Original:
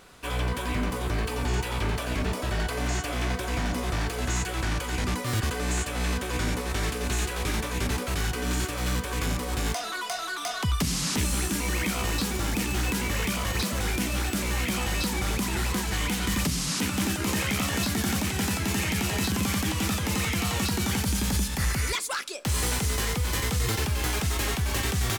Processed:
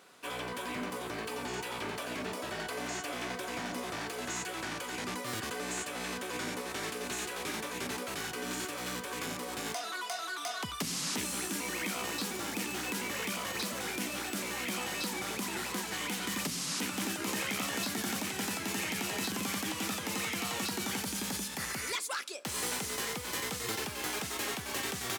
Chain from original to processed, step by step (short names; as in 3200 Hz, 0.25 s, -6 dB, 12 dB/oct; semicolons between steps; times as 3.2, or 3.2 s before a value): HPF 240 Hz 12 dB/oct; gain -5.5 dB